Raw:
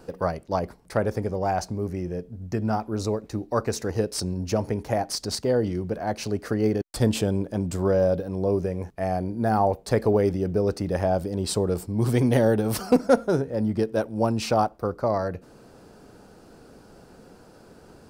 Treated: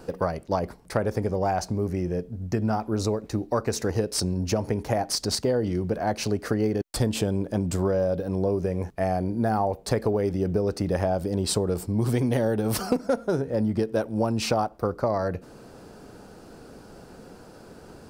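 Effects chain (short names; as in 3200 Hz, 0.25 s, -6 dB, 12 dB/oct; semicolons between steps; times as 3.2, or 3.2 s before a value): compressor 6:1, threshold -24 dBFS, peak gain reduction 11.5 dB; gain +3.5 dB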